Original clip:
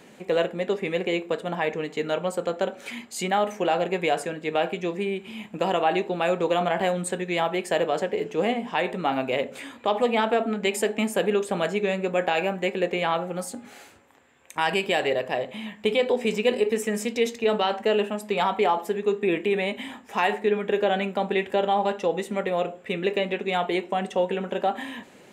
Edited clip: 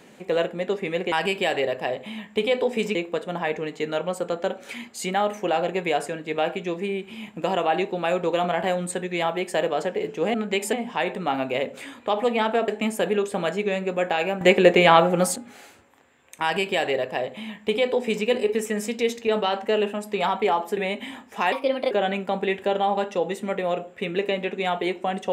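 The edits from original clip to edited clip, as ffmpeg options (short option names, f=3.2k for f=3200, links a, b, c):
-filter_complex "[0:a]asplit=11[a][b][c][d][e][f][g][h][i][j][k];[a]atrim=end=1.122[l];[b]atrim=start=14.598:end=16.432[m];[c]atrim=start=1.118:end=8.512[n];[d]atrim=start=10.458:end=10.852[o];[e]atrim=start=8.508:end=10.462[p];[f]atrim=start=10.848:end=12.582[q];[g]atrim=start=12.578:end=13.532,asetpts=PTS-STARTPTS,volume=10dB[r];[h]atrim=start=13.528:end=18.942[s];[i]atrim=start=19.538:end=20.294[t];[j]atrim=start=20.29:end=20.79,asetpts=PTS-STARTPTS,asetrate=56448,aresample=44100[u];[k]atrim=start=20.786[v];[l][m]acrossfade=d=0.004:c1=hsin:c2=hsin[w];[w][n]acrossfade=d=0.004:c1=hsin:c2=hsin[x];[x][o]acrossfade=d=0.004:c1=hsin:c2=hsin[y];[y][p]acrossfade=d=0.004:c1=hsin:c2=hsin[z];[z][q]acrossfade=d=0.004:c1=hsin:c2=hsin[aa];[aa][r]acrossfade=d=0.004:c1=hsin:c2=hsin[ab];[ab][s]acrossfade=d=0.004:c1=hsin:c2=hsin[ac];[ac][t]acrossfade=d=0.004:c1=hsin:c2=hsin[ad];[ad][u]acrossfade=d=0.004:c1=hsin:c2=hsin[ae];[ae][v]acrossfade=d=0.004:c1=hsin:c2=hsin"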